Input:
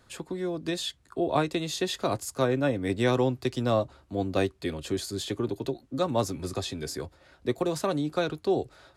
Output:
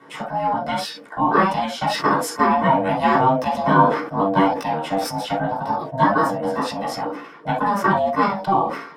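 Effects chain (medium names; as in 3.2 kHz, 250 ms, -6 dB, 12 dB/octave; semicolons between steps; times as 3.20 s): pitch shift switched off and on +3.5 st, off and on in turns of 262 ms; in parallel at +1 dB: compression, threshold -39 dBFS, peak gain reduction 18 dB; on the sum: ring modulator 390 Hz; reverberation, pre-delay 3 ms, DRR -5 dB; decay stretcher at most 77 dB/s; trim -5 dB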